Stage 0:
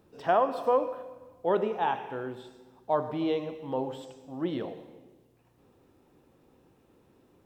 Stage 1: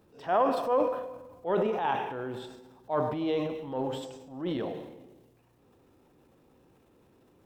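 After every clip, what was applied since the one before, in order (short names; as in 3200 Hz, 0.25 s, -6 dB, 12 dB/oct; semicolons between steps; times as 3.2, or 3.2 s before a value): transient shaper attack -7 dB, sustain +7 dB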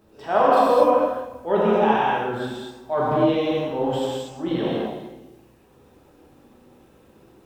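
non-linear reverb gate 0.27 s flat, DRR -6 dB; gain +3 dB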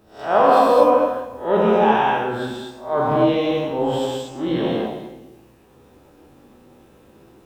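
spectral swells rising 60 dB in 0.36 s; gain +1.5 dB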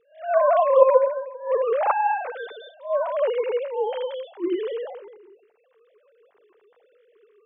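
sine-wave speech; gain -4 dB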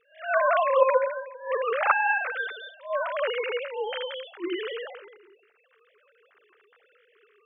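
band shelf 2000 Hz +14.5 dB; gain -6 dB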